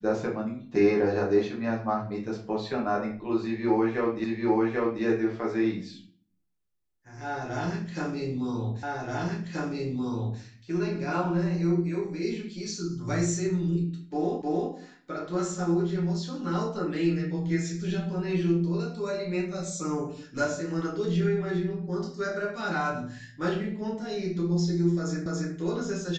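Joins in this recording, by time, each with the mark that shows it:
0:04.24: the same again, the last 0.79 s
0:08.83: the same again, the last 1.58 s
0:14.42: the same again, the last 0.31 s
0:25.26: the same again, the last 0.28 s

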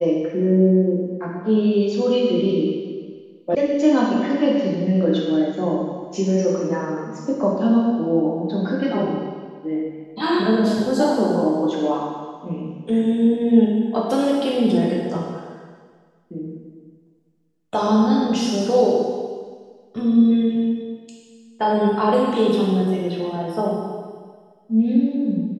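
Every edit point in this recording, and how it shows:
0:03.55: cut off before it has died away

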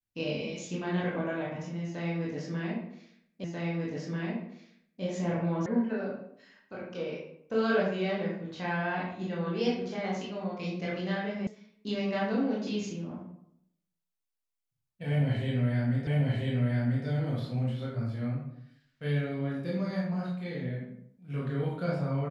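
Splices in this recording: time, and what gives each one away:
0:03.44: the same again, the last 1.59 s
0:05.66: cut off before it has died away
0:11.47: cut off before it has died away
0:16.07: the same again, the last 0.99 s

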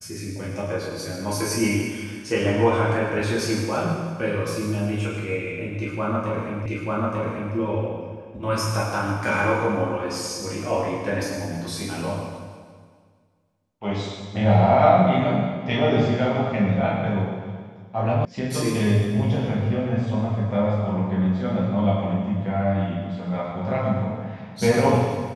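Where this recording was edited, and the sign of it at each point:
0:06.66: the same again, the last 0.89 s
0:18.25: cut off before it has died away

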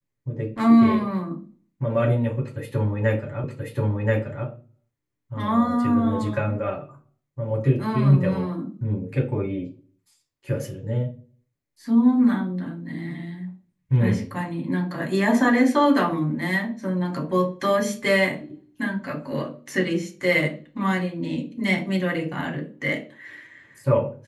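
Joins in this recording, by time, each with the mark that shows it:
0:03.44: the same again, the last 1.03 s

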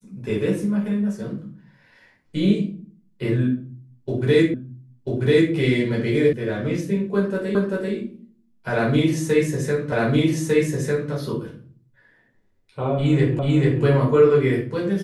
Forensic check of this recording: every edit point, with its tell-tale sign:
0:04.54: the same again, the last 0.99 s
0:06.33: cut off before it has died away
0:07.55: the same again, the last 0.39 s
0:09.92: the same again, the last 1.2 s
0:13.39: the same again, the last 0.44 s

